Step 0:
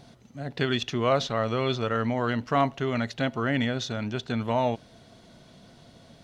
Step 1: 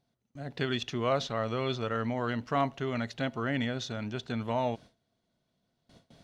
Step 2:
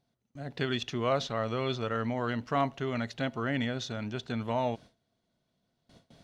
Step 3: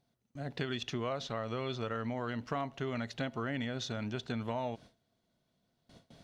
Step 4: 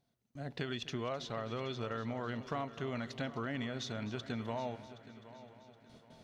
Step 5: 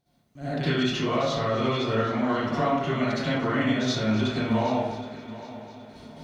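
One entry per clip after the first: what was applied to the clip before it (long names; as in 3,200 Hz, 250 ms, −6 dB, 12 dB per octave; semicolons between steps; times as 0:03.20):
noise gate with hold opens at −40 dBFS; level −5 dB
no processing that can be heard
downward compressor, threshold −32 dBFS, peak gain reduction 9.5 dB
echo machine with several playback heads 257 ms, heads first and third, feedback 54%, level −16.5 dB; level −2.5 dB
convolution reverb RT60 0.85 s, pre-delay 55 ms, DRR −12 dB; level +1.5 dB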